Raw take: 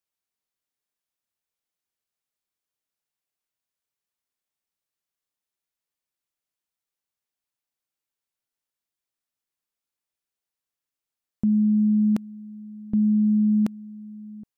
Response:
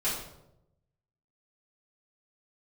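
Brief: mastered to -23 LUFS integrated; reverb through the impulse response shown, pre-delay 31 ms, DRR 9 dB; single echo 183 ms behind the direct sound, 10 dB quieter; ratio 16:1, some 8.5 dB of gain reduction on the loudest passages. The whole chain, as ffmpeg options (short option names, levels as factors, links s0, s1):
-filter_complex "[0:a]acompressor=threshold=0.0501:ratio=16,aecho=1:1:183:0.316,asplit=2[s0][s1];[1:a]atrim=start_sample=2205,adelay=31[s2];[s1][s2]afir=irnorm=-1:irlink=0,volume=0.141[s3];[s0][s3]amix=inputs=2:normalize=0,volume=2.24"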